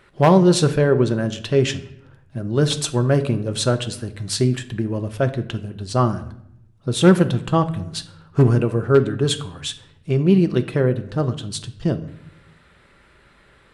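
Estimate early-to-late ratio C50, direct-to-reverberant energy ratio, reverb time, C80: 14.0 dB, 8.0 dB, 0.70 s, 17.0 dB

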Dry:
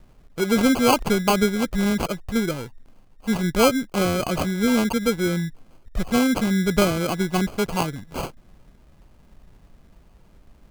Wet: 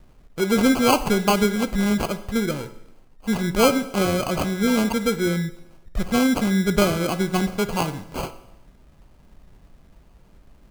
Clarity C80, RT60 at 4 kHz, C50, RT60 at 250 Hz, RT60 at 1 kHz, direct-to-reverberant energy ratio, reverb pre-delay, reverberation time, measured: 15.5 dB, 0.85 s, 13.5 dB, 0.85 s, 0.85 s, 10.5 dB, 9 ms, 0.85 s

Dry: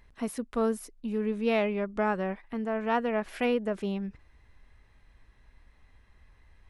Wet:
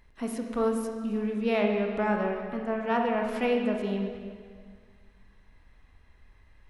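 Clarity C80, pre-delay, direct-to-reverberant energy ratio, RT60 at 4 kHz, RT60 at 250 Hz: 5.0 dB, 21 ms, 1.5 dB, 1.7 s, 2.1 s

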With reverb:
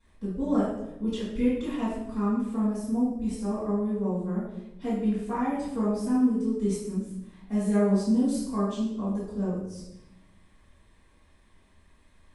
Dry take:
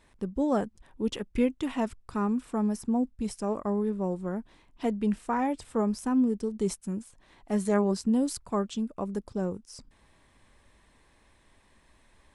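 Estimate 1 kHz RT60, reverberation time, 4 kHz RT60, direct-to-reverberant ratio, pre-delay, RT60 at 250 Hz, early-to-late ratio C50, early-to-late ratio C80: 0.80 s, 0.90 s, 0.70 s, -15.0 dB, 3 ms, 1.4 s, 0.5 dB, 4.0 dB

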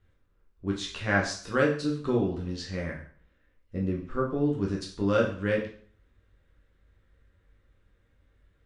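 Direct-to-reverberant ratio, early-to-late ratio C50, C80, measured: -2.5 dB, 7.0 dB, 11.0 dB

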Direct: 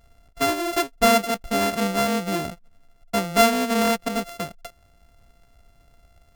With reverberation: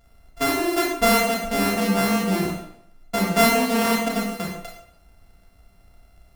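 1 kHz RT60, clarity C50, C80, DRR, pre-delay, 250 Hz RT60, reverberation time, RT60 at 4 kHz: 0.70 s, 3.0 dB, 6.5 dB, -1.5 dB, 24 ms, 0.70 s, 0.65 s, 0.60 s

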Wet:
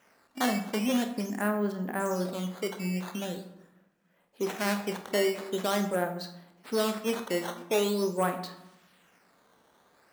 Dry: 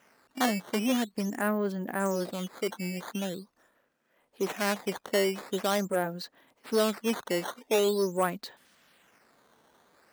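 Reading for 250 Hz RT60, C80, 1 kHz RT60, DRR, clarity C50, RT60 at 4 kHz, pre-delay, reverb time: 1.3 s, 12.0 dB, 1.0 s, 6.0 dB, 9.5 dB, 0.55 s, 28 ms, 0.95 s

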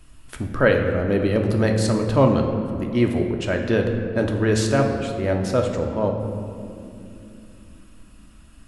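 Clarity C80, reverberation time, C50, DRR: 6.5 dB, 2.9 s, 5.0 dB, 2.5 dB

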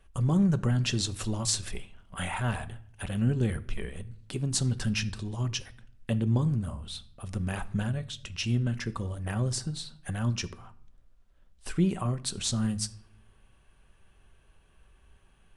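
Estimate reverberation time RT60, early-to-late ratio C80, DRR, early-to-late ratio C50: 0.65 s, 21.5 dB, 11.5 dB, 18.5 dB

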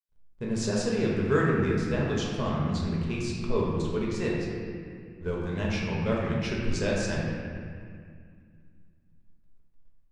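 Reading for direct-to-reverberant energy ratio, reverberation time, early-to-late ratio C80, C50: -4.5 dB, 2.2 s, 1.0 dB, -1.0 dB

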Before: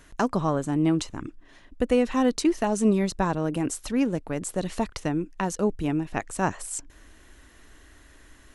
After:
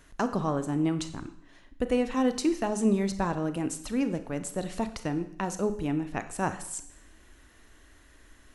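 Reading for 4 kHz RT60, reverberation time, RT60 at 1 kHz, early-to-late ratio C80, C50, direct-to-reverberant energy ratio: 0.65 s, 0.70 s, 0.65 s, 15.0 dB, 12.0 dB, 10.0 dB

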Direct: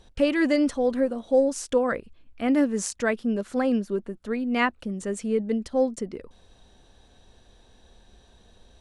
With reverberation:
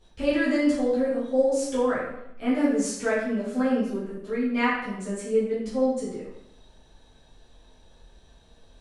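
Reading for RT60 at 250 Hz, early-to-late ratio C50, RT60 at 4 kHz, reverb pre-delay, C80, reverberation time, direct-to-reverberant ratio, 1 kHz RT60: 0.90 s, 1.5 dB, 0.65 s, 7 ms, 4.5 dB, 0.80 s, -10.0 dB, 0.80 s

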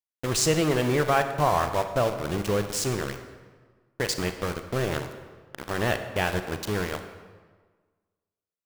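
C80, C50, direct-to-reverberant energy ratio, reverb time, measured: 10.5 dB, 9.0 dB, 8.0 dB, 1.5 s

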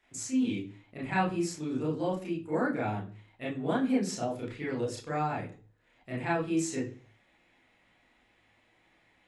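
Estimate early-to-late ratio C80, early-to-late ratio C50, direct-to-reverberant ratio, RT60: 13.5 dB, 7.0 dB, -6.0 dB, 0.40 s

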